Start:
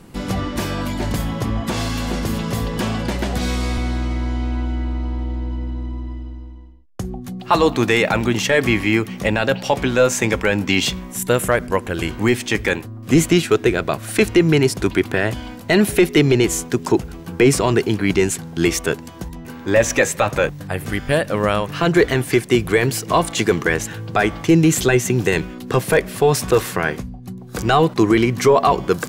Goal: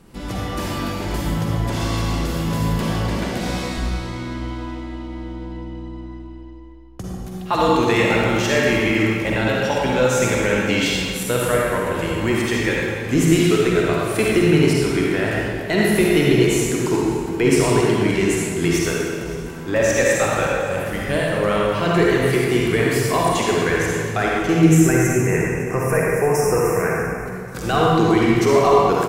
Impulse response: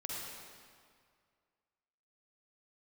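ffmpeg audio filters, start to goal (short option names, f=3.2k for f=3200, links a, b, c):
-filter_complex "[0:a]asettb=1/sr,asplit=3[a][b][c];[a]atrim=end=24.654[d];[b]atrim=start=24.65:end=27.17,asetpts=PTS-STARTPTS,afade=t=in:d=0.004:c=qsin,afade=t=out:st=2.516:d=0.004:c=qsin,asuperstop=centerf=3700:order=12:qfactor=1.4[e];[c]atrim=start=27.166[f];[d][e]acrossfade=d=0.004:c1=hsin:c2=qsin[g];[g][f]acrossfade=d=0.004:c1=qsin:c2=hsin,aecho=1:1:565|1130|1695:0.1|0.044|0.0194[h];[1:a]atrim=start_sample=2205[i];[h][i]afir=irnorm=-1:irlink=0,volume=-1.5dB"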